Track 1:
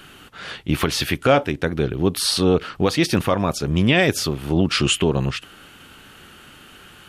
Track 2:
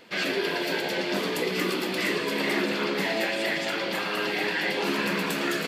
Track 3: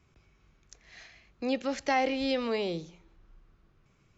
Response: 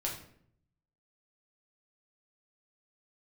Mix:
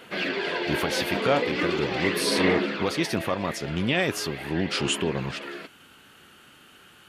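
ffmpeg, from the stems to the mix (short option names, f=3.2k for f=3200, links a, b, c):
-filter_complex "[0:a]volume=-7dB[a];[1:a]lowpass=3.6k,aphaser=in_gain=1:out_gain=1:delay=4.4:decay=0.39:speed=0.41:type=sinusoidal,afade=t=out:st=2.49:d=0.63:silence=0.316228[b];[2:a]volume=-10dB[c];[a][b][c]amix=inputs=3:normalize=0,highpass=f=140:p=1"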